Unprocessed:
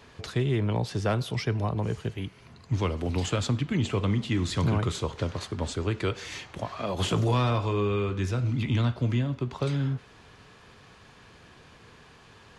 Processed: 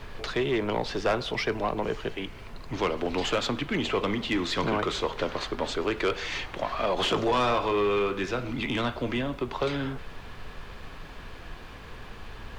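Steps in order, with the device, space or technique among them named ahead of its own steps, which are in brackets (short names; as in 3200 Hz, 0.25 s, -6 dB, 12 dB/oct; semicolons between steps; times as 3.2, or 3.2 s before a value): aircraft cabin announcement (BPF 360–4100 Hz; soft clip -25.5 dBFS, distortion -15 dB; brown noise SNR 11 dB); gain +7.5 dB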